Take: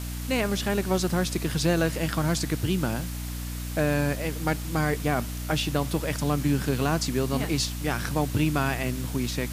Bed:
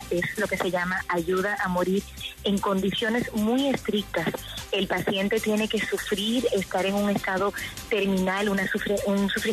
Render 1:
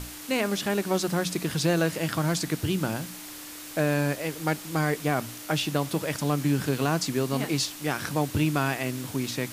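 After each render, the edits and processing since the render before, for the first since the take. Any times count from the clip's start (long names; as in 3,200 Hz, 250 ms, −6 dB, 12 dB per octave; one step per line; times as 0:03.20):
mains-hum notches 60/120/180/240 Hz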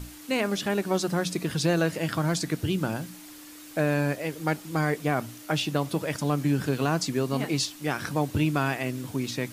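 broadband denoise 7 dB, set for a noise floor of −41 dBFS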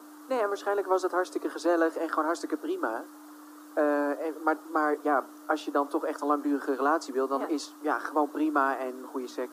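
Butterworth high-pass 280 Hz 72 dB per octave
high shelf with overshoot 1,700 Hz −10.5 dB, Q 3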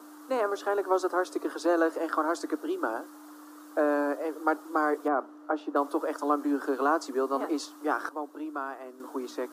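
0:05.08–0:05.76: low-pass filter 1,100 Hz 6 dB per octave
0:08.09–0:09.00: clip gain −9.5 dB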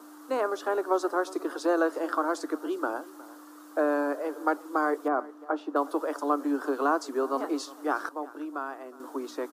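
single-tap delay 362 ms −20 dB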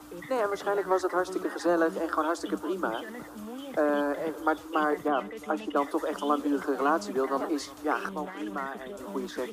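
mix in bed −17 dB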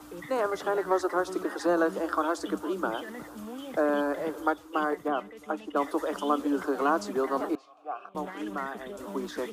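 0:04.47–0:05.80: expander for the loud parts, over −34 dBFS
0:07.55–0:08.15: formant filter a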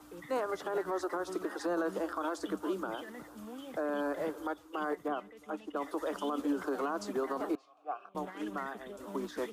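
brickwall limiter −24 dBFS, peak gain reduction 11 dB
expander for the loud parts 1.5 to 1, over −42 dBFS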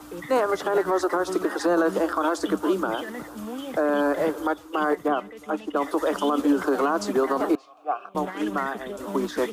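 level +11.5 dB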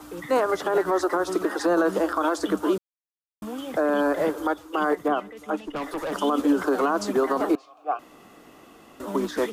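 0:02.78–0:03.42: silence
0:05.61–0:06.12: tube saturation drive 26 dB, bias 0.3
0:07.99–0:09.00: fill with room tone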